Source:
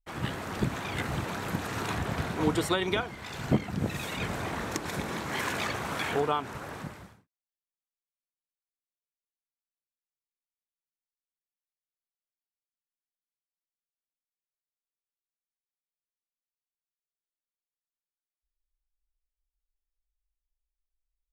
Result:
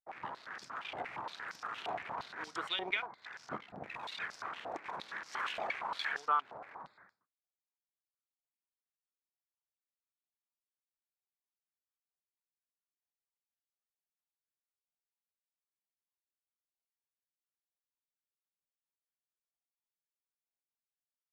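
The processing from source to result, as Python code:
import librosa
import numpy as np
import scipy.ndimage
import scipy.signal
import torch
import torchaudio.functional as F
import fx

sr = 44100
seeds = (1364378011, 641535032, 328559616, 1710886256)

y = fx.wiener(x, sr, points=15)
y = fx.filter_held_bandpass(y, sr, hz=8.6, low_hz=720.0, high_hz=5300.0)
y = F.gain(torch.from_numpy(y), 4.0).numpy()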